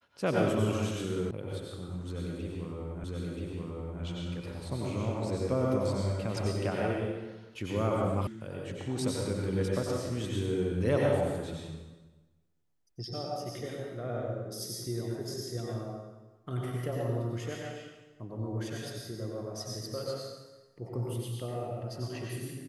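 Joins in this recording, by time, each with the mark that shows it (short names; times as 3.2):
1.31 sound cut off
3.04 repeat of the last 0.98 s
8.27 sound cut off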